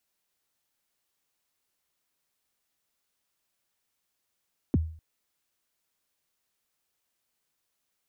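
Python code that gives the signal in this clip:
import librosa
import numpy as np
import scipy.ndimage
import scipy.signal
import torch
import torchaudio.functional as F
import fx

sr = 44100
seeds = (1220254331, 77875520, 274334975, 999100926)

y = fx.drum_kick(sr, seeds[0], length_s=0.25, level_db=-17.0, start_hz=360.0, end_hz=80.0, sweep_ms=28.0, decay_s=0.47, click=False)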